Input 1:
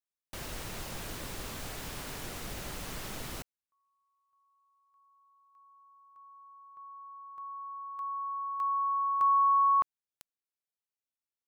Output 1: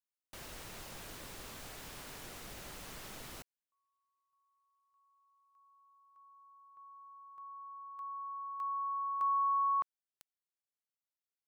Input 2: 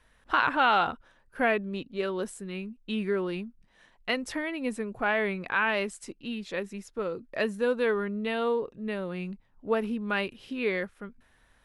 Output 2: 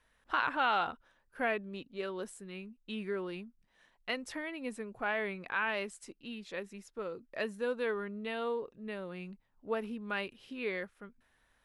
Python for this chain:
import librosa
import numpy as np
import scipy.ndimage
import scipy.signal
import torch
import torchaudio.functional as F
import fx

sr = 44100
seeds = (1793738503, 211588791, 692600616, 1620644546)

y = fx.low_shelf(x, sr, hz=280.0, db=-4.5)
y = y * 10.0 ** (-6.5 / 20.0)